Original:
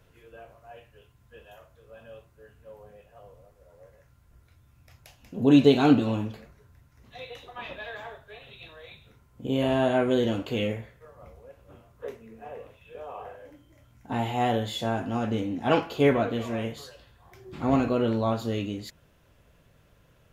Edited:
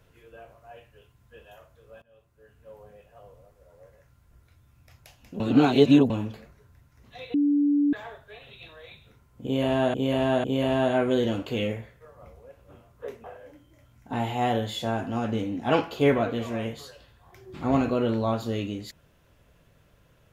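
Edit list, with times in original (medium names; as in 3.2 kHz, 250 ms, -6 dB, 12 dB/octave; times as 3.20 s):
2.02–2.73 s: fade in, from -22.5 dB
5.40–6.10 s: reverse
7.34–7.93 s: bleep 289 Hz -18.5 dBFS
9.44–9.94 s: loop, 3 plays
12.24–13.23 s: delete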